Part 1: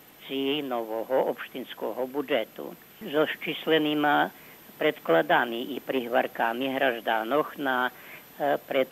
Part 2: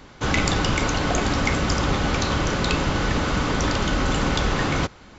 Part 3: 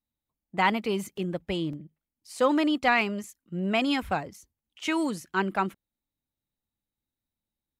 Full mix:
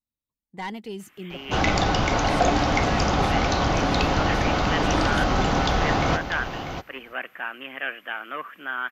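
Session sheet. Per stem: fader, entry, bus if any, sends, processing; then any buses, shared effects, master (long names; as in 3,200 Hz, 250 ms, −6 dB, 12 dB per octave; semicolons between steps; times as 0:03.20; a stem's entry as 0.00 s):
−14.0 dB, 1.00 s, no send, no echo send, flat-topped bell 1,800 Hz +13.5 dB
−1.5 dB, 1.30 s, no send, echo send −10 dB, Butterworth low-pass 6,600 Hz 48 dB per octave; parametric band 730 Hz +10 dB 0.49 octaves
−5.5 dB, 0.00 s, no send, no echo send, soft clipping −18 dBFS, distortion −16 dB; phaser whose notches keep moving one way falling 0.52 Hz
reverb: not used
echo: single-tap delay 644 ms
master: no processing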